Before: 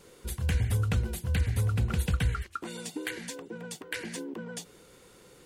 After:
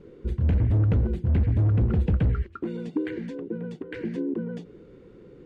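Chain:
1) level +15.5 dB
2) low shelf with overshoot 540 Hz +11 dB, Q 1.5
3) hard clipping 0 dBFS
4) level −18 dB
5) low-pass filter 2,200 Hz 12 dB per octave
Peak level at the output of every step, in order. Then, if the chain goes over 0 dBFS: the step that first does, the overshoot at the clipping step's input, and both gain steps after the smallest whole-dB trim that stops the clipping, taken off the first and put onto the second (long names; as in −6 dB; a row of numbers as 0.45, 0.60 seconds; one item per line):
−1.5, +9.0, 0.0, −18.0, −17.5 dBFS
step 2, 9.0 dB
step 1 +6.5 dB, step 4 −9 dB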